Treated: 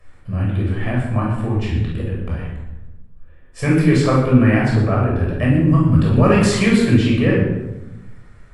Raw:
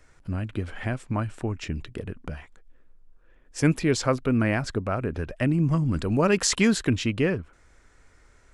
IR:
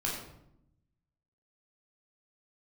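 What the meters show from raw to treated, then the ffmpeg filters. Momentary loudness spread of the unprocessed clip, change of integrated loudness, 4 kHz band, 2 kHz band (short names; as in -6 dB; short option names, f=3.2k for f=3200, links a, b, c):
14 LU, +8.5 dB, +3.0 dB, +6.5 dB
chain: -filter_complex "[0:a]equalizer=f=6.3k:w=2:g=-10.5[a];[1:a]atrim=start_sample=2205,asetrate=33075,aresample=44100[b];[a][b]afir=irnorm=-1:irlink=0"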